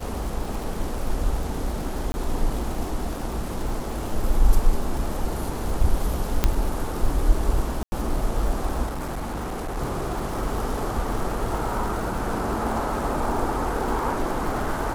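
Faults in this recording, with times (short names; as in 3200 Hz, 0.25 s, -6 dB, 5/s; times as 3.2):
crackle 160/s -31 dBFS
2.12–2.14 gap 20 ms
6.44 pop -5 dBFS
7.83–7.92 gap 90 ms
8.86–9.78 clipped -26.5 dBFS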